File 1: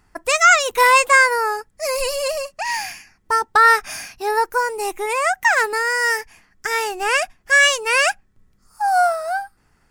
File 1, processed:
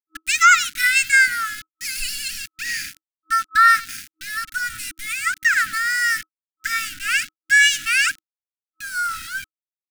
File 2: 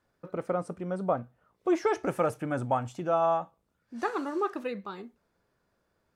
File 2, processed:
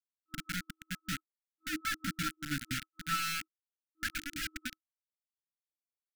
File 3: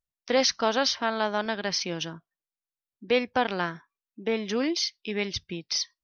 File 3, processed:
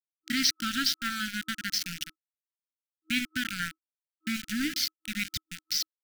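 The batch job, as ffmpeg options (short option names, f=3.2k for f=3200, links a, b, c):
-af "aecho=1:1:97|194|291:0.112|0.0393|0.0137,aeval=exprs='val(0)*gte(abs(val(0)),0.0447)':c=same,afftfilt=real='re*(1-between(b*sr/4096,320,1300))':imag='im*(1-between(b*sr/4096,320,1300))':win_size=4096:overlap=0.75"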